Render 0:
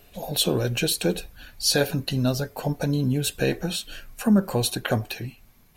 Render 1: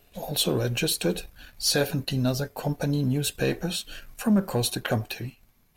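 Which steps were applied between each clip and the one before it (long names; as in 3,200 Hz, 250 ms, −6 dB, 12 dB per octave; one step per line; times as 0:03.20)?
leveller curve on the samples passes 1
level −5 dB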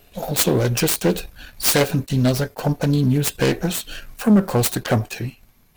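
phase distortion by the signal itself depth 0.23 ms
level that may rise only so fast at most 520 dB per second
level +7.5 dB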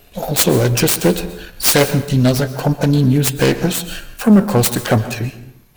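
dense smooth reverb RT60 0.73 s, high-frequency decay 0.7×, pre-delay 110 ms, DRR 13 dB
level +4.5 dB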